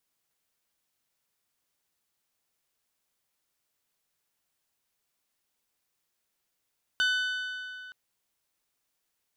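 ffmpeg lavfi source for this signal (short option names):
-f lavfi -i "aevalsrc='0.0708*pow(10,-3*t/2.7)*sin(2*PI*1500*t)+0.0398*pow(10,-3*t/2.193)*sin(2*PI*3000*t)+0.0224*pow(10,-3*t/2.076)*sin(2*PI*3600*t)+0.0126*pow(10,-3*t/1.942)*sin(2*PI*4500*t)+0.00708*pow(10,-3*t/1.781)*sin(2*PI*6000*t)+0.00398*pow(10,-3*t/1.666)*sin(2*PI*7500*t)+0.00224*pow(10,-3*t/1.577)*sin(2*PI*9000*t)+0.00126*pow(10,-3*t/1.447)*sin(2*PI*12000*t)':d=0.92:s=44100"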